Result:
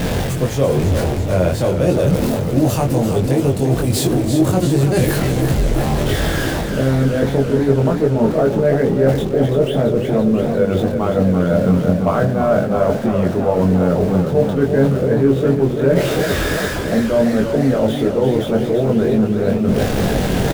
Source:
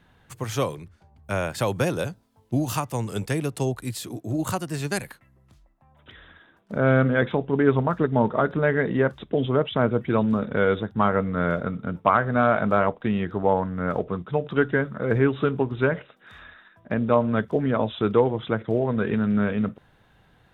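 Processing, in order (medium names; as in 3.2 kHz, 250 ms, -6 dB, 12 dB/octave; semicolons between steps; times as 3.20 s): jump at every zero crossing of -28.5 dBFS; resonant low shelf 790 Hz +8 dB, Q 1.5; reverse; compression 6:1, threshold -24 dBFS, peak gain reduction 19 dB; reverse; doubling 22 ms -2.5 dB; modulated delay 339 ms, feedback 73%, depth 100 cents, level -8 dB; trim +8 dB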